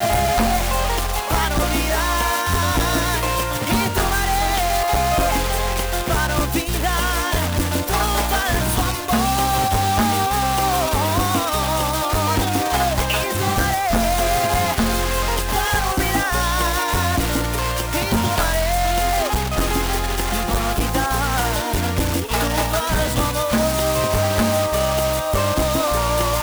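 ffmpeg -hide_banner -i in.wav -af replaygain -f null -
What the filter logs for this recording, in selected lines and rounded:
track_gain = +3.5 dB
track_peak = 0.232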